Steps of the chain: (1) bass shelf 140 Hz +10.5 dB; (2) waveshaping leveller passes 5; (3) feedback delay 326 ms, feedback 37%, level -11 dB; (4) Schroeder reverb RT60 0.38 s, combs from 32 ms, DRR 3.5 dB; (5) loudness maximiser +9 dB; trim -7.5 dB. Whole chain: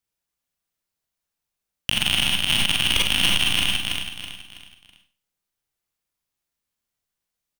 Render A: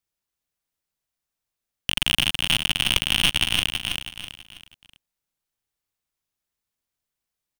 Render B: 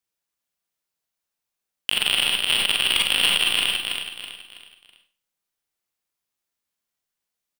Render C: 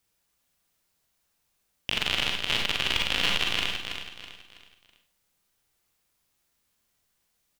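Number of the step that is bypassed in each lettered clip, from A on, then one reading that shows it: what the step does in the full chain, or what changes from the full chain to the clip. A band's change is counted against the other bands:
4, momentary loudness spread change -1 LU; 1, 125 Hz band -13.0 dB; 2, crest factor change +6.5 dB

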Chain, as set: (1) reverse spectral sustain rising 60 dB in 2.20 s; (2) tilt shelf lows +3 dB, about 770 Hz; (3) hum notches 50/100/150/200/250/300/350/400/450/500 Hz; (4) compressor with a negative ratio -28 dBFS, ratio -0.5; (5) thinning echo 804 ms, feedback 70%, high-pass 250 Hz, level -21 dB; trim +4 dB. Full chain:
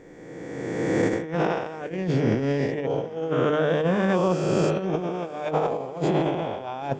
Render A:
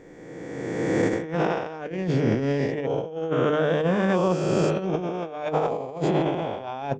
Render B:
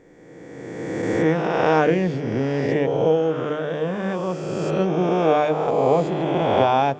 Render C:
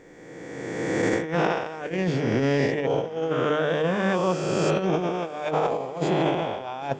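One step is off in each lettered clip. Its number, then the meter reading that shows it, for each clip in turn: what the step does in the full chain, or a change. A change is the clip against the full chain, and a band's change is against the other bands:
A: 5, echo-to-direct -18.5 dB to none; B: 4, crest factor change +1.5 dB; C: 2, momentary loudness spread change -2 LU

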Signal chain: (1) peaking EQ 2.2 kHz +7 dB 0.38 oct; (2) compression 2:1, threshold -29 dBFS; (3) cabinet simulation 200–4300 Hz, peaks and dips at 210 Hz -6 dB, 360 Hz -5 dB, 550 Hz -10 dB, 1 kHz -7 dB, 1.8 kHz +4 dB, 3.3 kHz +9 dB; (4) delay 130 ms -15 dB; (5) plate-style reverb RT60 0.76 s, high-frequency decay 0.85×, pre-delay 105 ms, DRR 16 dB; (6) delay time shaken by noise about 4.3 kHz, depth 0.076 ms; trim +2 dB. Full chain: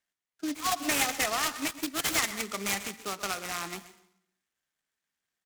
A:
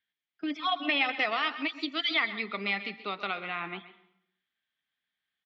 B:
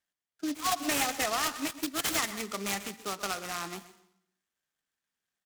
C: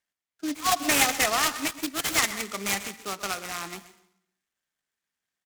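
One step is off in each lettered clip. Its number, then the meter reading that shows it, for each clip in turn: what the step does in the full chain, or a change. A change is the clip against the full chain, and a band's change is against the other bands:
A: 6, 125 Hz band -3.5 dB; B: 1, 2 kHz band -2.5 dB; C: 2, momentary loudness spread change +4 LU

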